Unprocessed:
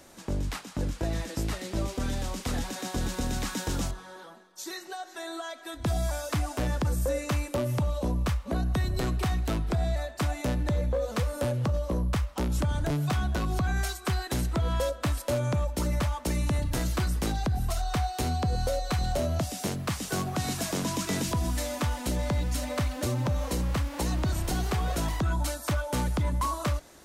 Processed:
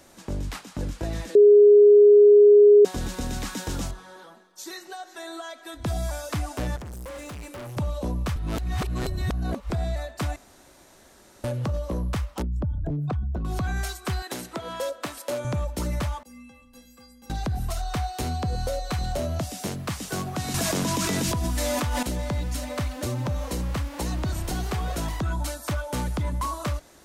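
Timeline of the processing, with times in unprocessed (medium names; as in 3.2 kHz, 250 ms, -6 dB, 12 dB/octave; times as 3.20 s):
1.35–2.85 s: bleep 413 Hz -9.5 dBFS
6.76–7.77 s: hard clipper -36 dBFS
8.36–9.70 s: reverse
10.36–11.44 s: room tone
12.42–13.45 s: resonances exaggerated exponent 2
14.22–15.45 s: high-pass 280 Hz
16.23–17.30 s: inharmonic resonator 240 Hz, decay 0.79 s, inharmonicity 0.03
20.54–22.03 s: level flattener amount 100%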